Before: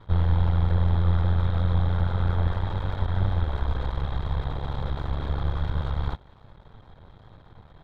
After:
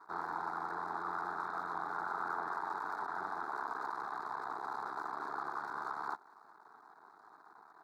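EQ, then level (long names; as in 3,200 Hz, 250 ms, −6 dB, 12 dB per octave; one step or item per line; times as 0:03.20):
high-pass filter 400 Hz 24 dB per octave
flat-topped bell 2,600 Hz −12 dB 1.2 octaves
phaser with its sweep stopped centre 1,300 Hz, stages 4
+3.0 dB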